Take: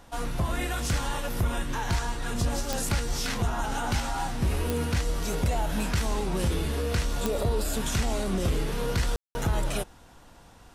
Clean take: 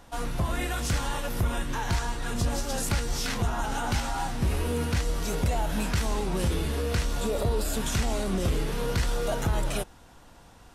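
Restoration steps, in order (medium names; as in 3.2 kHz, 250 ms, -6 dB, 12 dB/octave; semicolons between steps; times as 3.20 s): de-click; room tone fill 9.16–9.35 s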